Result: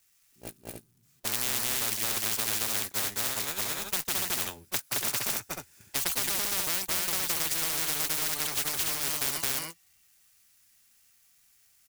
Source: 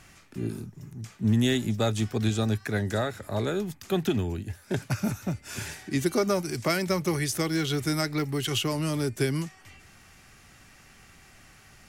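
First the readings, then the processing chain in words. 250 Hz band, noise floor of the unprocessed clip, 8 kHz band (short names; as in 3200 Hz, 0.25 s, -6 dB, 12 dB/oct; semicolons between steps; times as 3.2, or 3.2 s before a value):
-17.5 dB, -55 dBFS, +8.5 dB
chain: switching spikes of -27.5 dBFS; gate -25 dBFS, range -48 dB; on a send: loudspeakers at several distances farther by 75 m 0 dB, 98 m -6 dB; on the sum: spectral compressor 10:1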